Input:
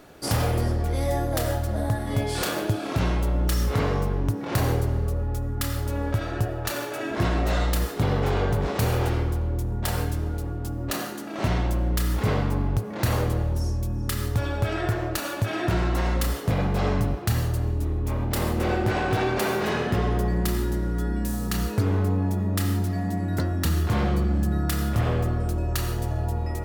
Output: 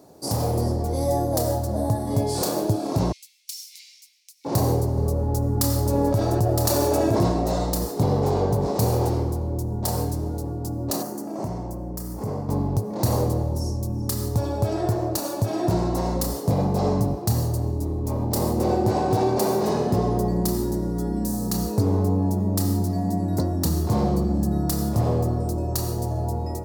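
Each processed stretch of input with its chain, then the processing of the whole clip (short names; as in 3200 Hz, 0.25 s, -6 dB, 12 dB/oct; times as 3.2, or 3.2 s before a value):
3.12–4.45 Chebyshev high-pass 2200 Hz, order 6 + high shelf 7500 Hz -8 dB
4.97–7.32 echo 0.964 s -7 dB + fast leveller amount 70%
11.02–12.49 bell 3500 Hz -9 dB 1.1 oct + notch 3900 Hz, Q 13 + compressor 2.5:1, threshold -30 dBFS
whole clip: HPF 99 Hz 12 dB/oct; band shelf 2100 Hz -16 dB; AGC gain up to 4 dB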